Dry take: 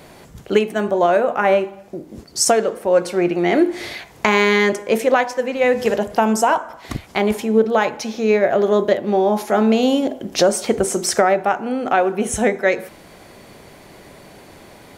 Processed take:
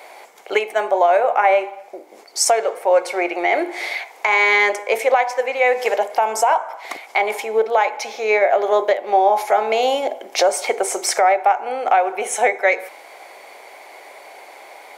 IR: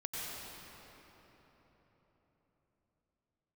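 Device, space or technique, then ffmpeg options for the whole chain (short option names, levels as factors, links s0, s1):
laptop speaker: -af "highpass=f=440:w=0.5412,highpass=f=440:w=1.3066,equalizer=f=800:t=o:w=0.6:g=9,equalizer=f=2200:t=o:w=0.21:g=12,alimiter=limit=0.501:level=0:latency=1:release=204"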